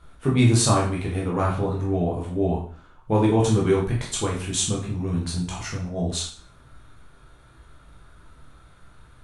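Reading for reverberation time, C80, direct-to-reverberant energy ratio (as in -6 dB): 0.45 s, 10.0 dB, -4.0 dB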